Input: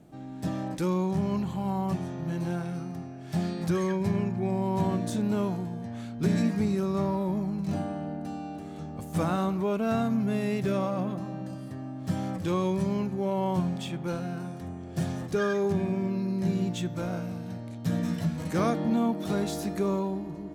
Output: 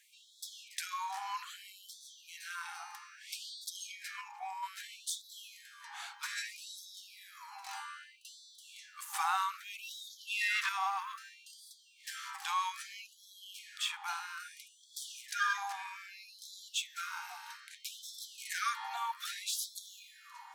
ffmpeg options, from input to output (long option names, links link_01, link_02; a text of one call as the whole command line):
ffmpeg -i in.wav -filter_complex "[0:a]asettb=1/sr,asplit=3[link_01][link_02][link_03];[link_01]atrim=end=4.214[link_04];[link_02]atrim=start=4.21:end=4.63,asetpts=PTS-STARTPTS,afade=type=in:duration=0.004:curve=qsin,afade=type=out:start_time=0.416:duration=0.004:curve=qsin,equalizer=frequency=1600:width_type=o:width=0.67:gain=-12,equalizer=frequency=4000:width_type=o:width=0.67:gain=-7,equalizer=frequency=10000:width_type=o:width=0.67:gain=-8[link_05];[link_03]atrim=start=4.626[link_06];[link_04][link_05]acrossfade=duration=0.004:curve1=hsin:curve2=qsin[link_07];[link_07][link_06]acrossfade=duration=0.004:curve1=qsin:curve2=hsin,asettb=1/sr,asplit=3[link_08][link_09][link_10];[link_08]atrim=end=10.074[link_11];[link_09]atrim=start=10.07:end=10.69,asetpts=PTS-STARTPTS,afade=type=in:duration=0.004:curve=qsin,afade=type=out:start_time=0.616:duration=0.004:curve=qsin,asplit=2[link_12][link_13];[link_13]highpass=frequency=720:poles=1,volume=20dB,asoftclip=type=tanh:threshold=-17.5dB[link_14];[link_12][link_14]amix=inputs=2:normalize=0,lowpass=frequency=3100:poles=1,volume=-6dB[link_15];[link_10]atrim=start=10.686[link_16];[link_11][link_15]acrossfade=duration=0.004:curve1=hsin:curve2=qsin[link_17];[link_17][link_16]acrossfade=duration=0.004:curve1=qsin:curve2=hsin,asplit=2[link_18][link_19];[link_19]acompressor=threshold=-35dB:ratio=6,volume=3dB[link_20];[link_18][link_20]amix=inputs=2:normalize=0,afftfilt=real='re*gte(b*sr/1024,730*pow(3300/730,0.5+0.5*sin(2*PI*0.62*pts/sr)))':imag='im*gte(b*sr/1024,730*pow(3300/730,0.5+0.5*sin(2*PI*0.62*pts/sr)))':win_size=1024:overlap=0.75" out.wav